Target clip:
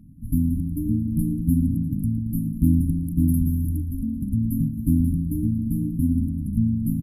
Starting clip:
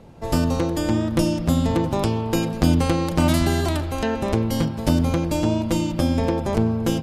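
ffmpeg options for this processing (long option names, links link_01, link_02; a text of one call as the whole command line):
ffmpeg -i in.wav -filter_complex "[0:a]asplit=6[link_01][link_02][link_03][link_04][link_05][link_06];[link_02]adelay=113,afreqshift=-49,volume=-17.5dB[link_07];[link_03]adelay=226,afreqshift=-98,volume=-22.4dB[link_08];[link_04]adelay=339,afreqshift=-147,volume=-27.3dB[link_09];[link_05]adelay=452,afreqshift=-196,volume=-32.1dB[link_10];[link_06]adelay=565,afreqshift=-245,volume=-37dB[link_11];[link_01][link_07][link_08][link_09][link_10][link_11]amix=inputs=6:normalize=0,afftfilt=real='re*(1-between(b*sr/4096,310,9800))':imag='im*(1-between(b*sr/4096,310,9800))':win_size=4096:overlap=0.75" out.wav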